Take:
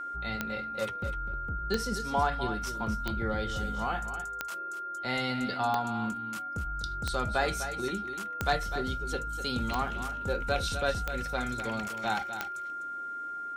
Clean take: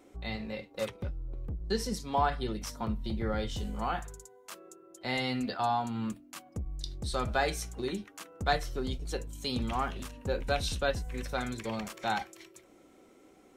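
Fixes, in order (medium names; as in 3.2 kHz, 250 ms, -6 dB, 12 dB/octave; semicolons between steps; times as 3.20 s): clip repair -16 dBFS; de-click; band-stop 1.4 kHz, Q 30; inverse comb 251 ms -10.5 dB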